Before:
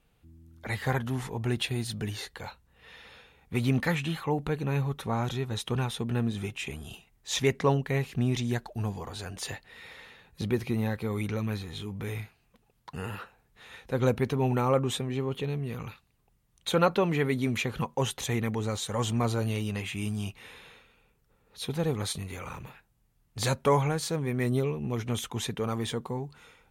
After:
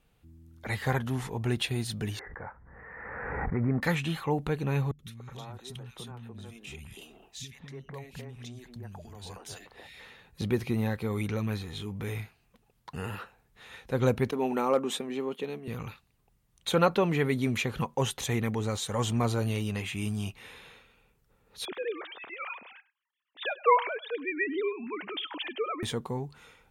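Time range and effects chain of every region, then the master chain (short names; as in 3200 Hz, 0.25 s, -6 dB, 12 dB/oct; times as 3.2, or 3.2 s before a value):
2.19–3.82 steep low-pass 2000 Hz 72 dB/oct + low shelf 410 Hz -3.5 dB + backwards sustainer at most 28 dB/s
4.91–10 compressor 5:1, threshold -40 dBFS + three bands offset in time lows, highs, mids 80/290 ms, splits 250/1800 Hz
14.31–15.68 Chebyshev high-pass 190 Hz, order 4 + expander -38 dBFS + hard clip -15.5 dBFS
21.65–25.83 sine-wave speech + tilt +3.5 dB/oct + echo 0.1 s -19.5 dB
whole clip: dry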